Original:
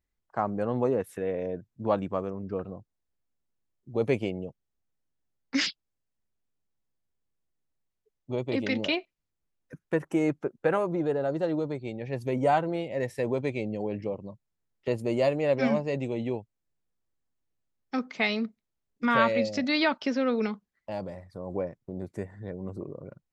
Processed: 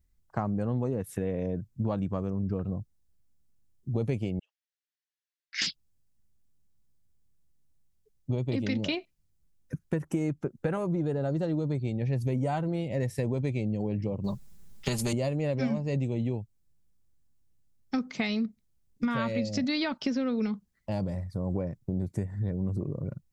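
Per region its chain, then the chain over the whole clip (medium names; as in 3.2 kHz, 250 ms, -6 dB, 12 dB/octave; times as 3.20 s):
4.39–5.62 s: Chebyshev high-pass 1.6 kHz, order 4 + distance through air 160 m
14.24–15.13 s: comb 5 ms, depth 70% + spectrum-flattening compressor 2:1
whole clip: tone controls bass +15 dB, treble +8 dB; compression, threshold -26 dBFS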